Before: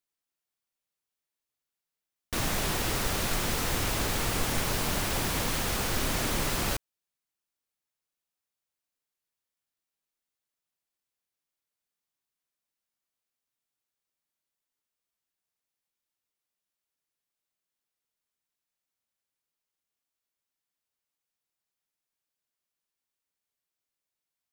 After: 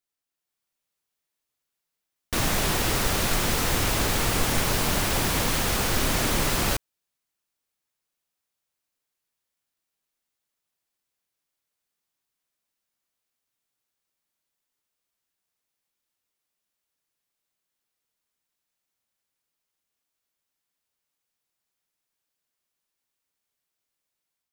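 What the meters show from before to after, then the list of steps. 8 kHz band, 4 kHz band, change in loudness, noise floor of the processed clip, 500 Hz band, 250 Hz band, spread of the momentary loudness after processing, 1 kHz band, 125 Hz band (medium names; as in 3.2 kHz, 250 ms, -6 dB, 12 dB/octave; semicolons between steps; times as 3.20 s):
+5.0 dB, +5.0 dB, +5.0 dB, -84 dBFS, +5.0 dB, +5.0 dB, 2 LU, +5.0 dB, +5.0 dB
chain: level rider gain up to 5 dB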